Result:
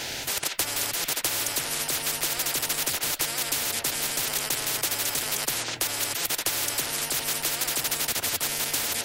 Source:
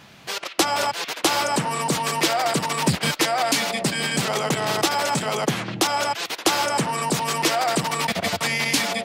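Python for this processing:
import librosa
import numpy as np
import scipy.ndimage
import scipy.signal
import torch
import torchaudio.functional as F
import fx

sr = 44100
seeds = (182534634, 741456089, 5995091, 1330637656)

y = fx.fixed_phaser(x, sr, hz=470.0, stages=4)
y = fx.spectral_comp(y, sr, ratio=10.0)
y = F.gain(torch.from_numpy(y), -1.0).numpy()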